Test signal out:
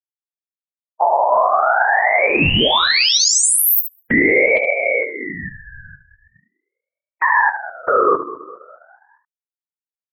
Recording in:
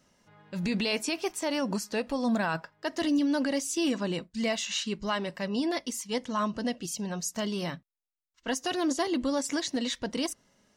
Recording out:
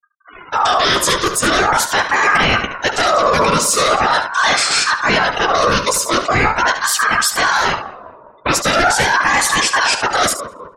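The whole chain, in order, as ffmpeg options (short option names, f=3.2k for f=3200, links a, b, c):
-filter_complex "[0:a]afftfilt=real='hypot(re,im)*cos(2*PI*random(0))':imag='hypot(re,im)*sin(2*PI*random(1))':win_size=512:overlap=0.75,afftfilt=real='re*gte(hypot(re,im),0.00178)':imag='im*gte(hypot(re,im),0.00178)':win_size=1024:overlap=0.75,asplit=2[a][b];[b]adelay=204,lowpass=f=810:p=1,volume=-17.5dB,asplit=2[c][d];[d]adelay=204,lowpass=f=810:p=1,volume=0.53,asplit=2[e][f];[f]adelay=204,lowpass=f=810:p=1,volume=0.53,asplit=2[g][h];[h]adelay=204,lowpass=f=810:p=1,volume=0.53,asplit=2[i][j];[j]adelay=204,lowpass=f=810:p=1,volume=0.53[k];[c][e][g][i][k]amix=inputs=5:normalize=0[l];[a][l]amix=inputs=2:normalize=0,apsyclip=35.5dB,asplit=2[m][n];[n]aecho=0:1:15|73:0.237|0.316[o];[m][o]amix=inputs=2:normalize=0,aeval=exprs='val(0)*sin(2*PI*1100*n/s+1100*0.3/0.42*sin(2*PI*0.42*n/s))':c=same,volume=-7dB"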